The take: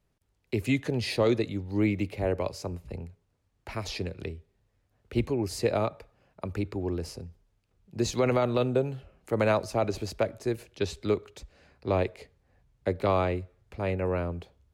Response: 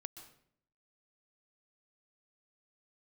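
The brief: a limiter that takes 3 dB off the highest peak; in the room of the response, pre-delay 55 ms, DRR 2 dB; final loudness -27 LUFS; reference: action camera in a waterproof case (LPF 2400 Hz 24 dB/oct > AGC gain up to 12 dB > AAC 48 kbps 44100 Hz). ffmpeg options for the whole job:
-filter_complex "[0:a]alimiter=limit=-17dB:level=0:latency=1,asplit=2[a][b];[1:a]atrim=start_sample=2205,adelay=55[c];[b][c]afir=irnorm=-1:irlink=0,volume=2.5dB[d];[a][d]amix=inputs=2:normalize=0,lowpass=f=2.4k:w=0.5412,lowpass=f=2.4k:w=1.3066,dynaudnorm=m=12dB,volume=1.5dB" -ar 44100 -c:a aac -b:a 48k

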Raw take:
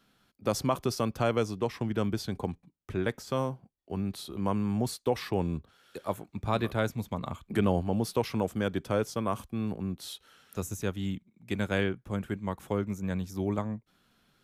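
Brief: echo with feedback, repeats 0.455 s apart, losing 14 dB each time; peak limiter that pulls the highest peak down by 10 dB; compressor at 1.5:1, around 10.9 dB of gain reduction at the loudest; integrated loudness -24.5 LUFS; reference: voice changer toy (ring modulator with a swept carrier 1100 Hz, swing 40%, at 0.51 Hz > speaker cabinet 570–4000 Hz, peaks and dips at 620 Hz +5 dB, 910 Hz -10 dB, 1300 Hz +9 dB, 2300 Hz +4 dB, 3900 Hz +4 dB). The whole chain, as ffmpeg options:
-af "acompressor=threshold=-53dB:ratio=1.5,alimiter=level_in=9dB:limit=-24dB:level=0:latency=1,volume=-9dB,aecho=1:1:455|910:0.2|0.0399,aeval=exprs='val(0)*sin(2*PI*1100*n/s+1100*0.4/0.51*sin(2*PI*0.51*n/s))':c=same,highpass=570,equalizer=f=620:t=q:w=4:g=5,equalizer=f=910:t=q:w=4:g=-10,equalizer=f=1.3k:t=q:w=4:g=9,equalizer=f=2.3k:t=q:w=4:g=4,equalizer=f=3.9k:t=q:w=4:g=4,lowpass=f=4k:w=0.5412,lowpass=f=4k:w=1.3066,volume=19.5dB"

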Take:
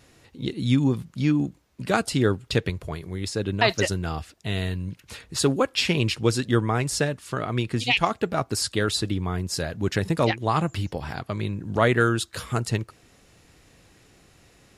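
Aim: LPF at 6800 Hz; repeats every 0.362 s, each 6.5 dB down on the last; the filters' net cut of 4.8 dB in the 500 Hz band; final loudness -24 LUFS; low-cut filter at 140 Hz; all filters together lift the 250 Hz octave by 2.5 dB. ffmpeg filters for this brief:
-af "highpass=140,lowpass=6.8k,equalizer=f=250:t=o:g=6.5,equalizer=f=500:t=o:g=-9,aecho=1:1:362|724|1086|1448|1810|2172:0.473|0.222|0.105|0.0491|0.0231|0.0109,volume=1dB"

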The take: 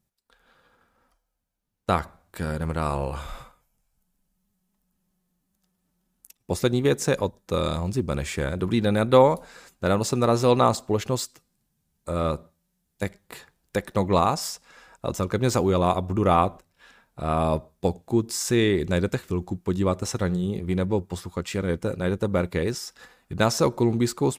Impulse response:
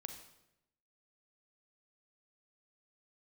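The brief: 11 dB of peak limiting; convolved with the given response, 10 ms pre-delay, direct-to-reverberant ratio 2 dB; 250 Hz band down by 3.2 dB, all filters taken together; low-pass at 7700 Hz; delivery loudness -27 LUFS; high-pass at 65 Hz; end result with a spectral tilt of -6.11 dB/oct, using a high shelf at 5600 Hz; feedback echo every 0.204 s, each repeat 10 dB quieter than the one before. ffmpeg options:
-filter_complex "[0:a]highpass=65,lowpass=7.7k,equalizer=f=250:t=o:g=-4.5,highshelf=f=5.6k:g=-8,alimiter=limit=-16dB:level=0:latency=1,aecho=1:1:204|408|612|816:0.316|0.101|0.0324|0.0104,asplit=2[a][b];[1:a]atrim=start_sample=2205,adelay=10[c];[b][c]afir=irnorm=-1:irlink=0,volume=1.5dB[d];[a][d]amix=inputs=2:normalize=0"

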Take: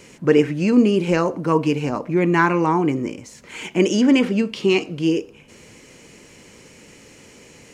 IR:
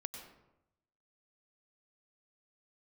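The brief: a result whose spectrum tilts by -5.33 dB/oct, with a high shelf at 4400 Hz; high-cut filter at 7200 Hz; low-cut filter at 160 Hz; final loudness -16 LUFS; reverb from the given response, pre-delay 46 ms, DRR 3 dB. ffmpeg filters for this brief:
-filter_complex "[0:a]highpass=160,lowpass=7.2k,highshelf=f=4.4k:g=-5.5,asplit=2[a][b];[1:a]atrim=start_sample=2205,adelay=46[c];[b][c]afir=irnorm=-1:irlink=0,volume=-1dB[d];[a][d]amix=inputs=2:normalize=0,volume=2dB"

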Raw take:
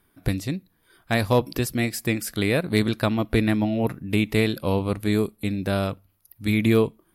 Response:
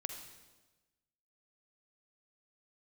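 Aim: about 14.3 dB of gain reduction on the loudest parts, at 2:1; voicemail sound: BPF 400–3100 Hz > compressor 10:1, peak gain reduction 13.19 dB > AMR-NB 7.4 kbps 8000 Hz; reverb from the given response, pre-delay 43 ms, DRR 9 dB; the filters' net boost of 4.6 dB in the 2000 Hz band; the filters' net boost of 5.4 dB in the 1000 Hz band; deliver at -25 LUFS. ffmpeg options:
-filter_complex "[0:a]equalizer=f=1k:t=o:g=6,equalizer=f=2k:t=o:g=5,acompressor=threshold=-41dB:ratio=2,asplit=2[a][b];[1:a]atrim=start_sample=2205,adelay=43[c];[b][c]afir=irnorm=-1:irlink=0,volume=-8dB[d];[a][d]amix=inputs=2:normalize=0,highpass=400,lowpass=3.1k,acompressor=threshold=-41dB:ratio=10,volume=23dB" -ar 8000 -c:a libopencore_amrnb -b:a 7400

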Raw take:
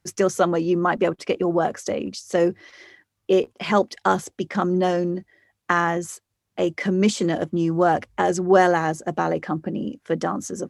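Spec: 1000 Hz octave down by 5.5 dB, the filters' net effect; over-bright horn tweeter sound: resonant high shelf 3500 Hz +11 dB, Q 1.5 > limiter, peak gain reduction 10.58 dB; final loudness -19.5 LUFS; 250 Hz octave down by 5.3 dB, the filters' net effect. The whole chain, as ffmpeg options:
-af "equalizer=f=250:t=o:g=-8.5,equalizer=f=1k:t=o:g=-6.5,highshelf=f=3.5k:t=q:w=1.5:g=11,volume=7dB,alimiter=limit=-7.5dB:level=0:latency=1"

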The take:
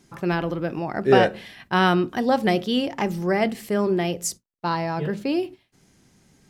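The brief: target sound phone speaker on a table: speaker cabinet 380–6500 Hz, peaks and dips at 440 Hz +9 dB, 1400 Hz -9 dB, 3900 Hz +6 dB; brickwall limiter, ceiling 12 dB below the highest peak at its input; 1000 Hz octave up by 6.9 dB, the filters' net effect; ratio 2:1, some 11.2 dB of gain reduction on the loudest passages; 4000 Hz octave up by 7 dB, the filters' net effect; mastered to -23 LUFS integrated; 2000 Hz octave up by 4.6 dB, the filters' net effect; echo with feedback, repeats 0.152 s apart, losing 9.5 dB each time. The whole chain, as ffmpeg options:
-af "equalizer=f=1k:t=o:g=9,equalizer=f=2k:t=o:g=5.5,equalizer=f=4k:t=o:g=4,acompressor=threshold=-28dB:ratio=2,alimiter=limit=-20.5dB:level=0:latency=1,highpass=f=380:w=0.5412,highpass=f=380:w=1.3066,equalizer=f=440:t=q:w=4:g=9,equalizer=f=1.4k:t=q:w=4:g=-9,equalizer=f=3.9k:t=q:w=4:g=6,lowpass=f=6.5k:w=0.5412,lowpass=f=6.5k:w=1.3066,aecho=1:1:152|304|456|608:0.335|0.111|0.0365|0.012,volume=8dB"

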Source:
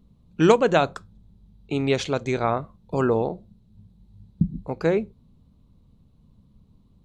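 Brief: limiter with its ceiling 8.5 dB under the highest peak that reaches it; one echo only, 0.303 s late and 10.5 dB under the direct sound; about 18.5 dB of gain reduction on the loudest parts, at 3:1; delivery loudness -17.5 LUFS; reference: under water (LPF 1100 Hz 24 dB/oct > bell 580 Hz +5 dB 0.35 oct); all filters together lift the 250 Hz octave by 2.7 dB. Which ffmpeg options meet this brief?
-af "equalizer=f=250:t=o:g=3.5,acompressor=threshold=-37dB:ratio=3,alimiter=level_in=5.5dB:limit=-24dB:level=0:latency=1,volume=-5.5dB,lowpass=f=1.1k:w=0.5412,lowpass=f=1.1k:w=1.3066,equalizer=f=580:t=o:w=0.35:g=5,aecho=1:1:303:0.299,volume=24dB"

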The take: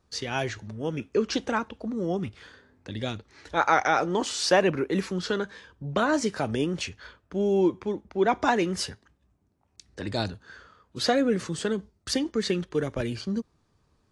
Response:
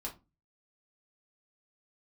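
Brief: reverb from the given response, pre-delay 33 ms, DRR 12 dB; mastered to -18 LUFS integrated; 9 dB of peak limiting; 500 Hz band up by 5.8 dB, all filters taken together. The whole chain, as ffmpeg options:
-filter_complex "[0:a]equalizer=f=500:t=o:g=7.5,alimiter=limit=-12dB:level=0:latency=1,asplit=2[a][b];[1:a]atrim=start_sample=2205,adelay=33[c];[b][c]afir=irnorm=-1:irlink=0,volume=-11.5dB[d];[a][d]amix=inputs=2:normalize=0,volume=7dB"

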